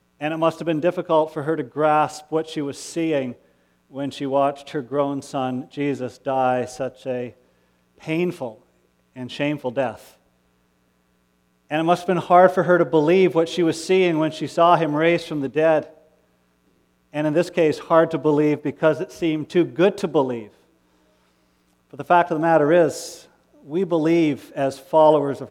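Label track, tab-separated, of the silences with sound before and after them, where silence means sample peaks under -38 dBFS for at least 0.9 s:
10.080000	11.710000	silence
15.900000	17.140000	silence
20.470000	21.930000	silence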